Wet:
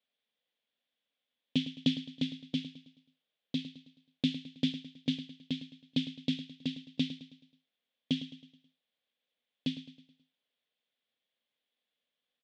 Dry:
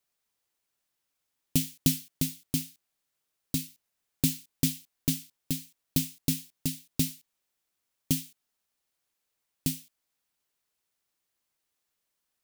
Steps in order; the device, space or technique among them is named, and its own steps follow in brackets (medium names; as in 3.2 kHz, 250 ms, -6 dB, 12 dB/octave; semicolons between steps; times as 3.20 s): kitchen radio (cabinet simulation 210–3700 Hz, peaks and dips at 240 Hz +7 dB, 350 Hz -9 dB, 510 Hz +6 dB, 930 Hz -7 dB, 1.3 kHz -7 dB, 3.4 kHz +10 dB); feedback delay 107 ms, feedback 46%, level -13 dB; trim -2 dB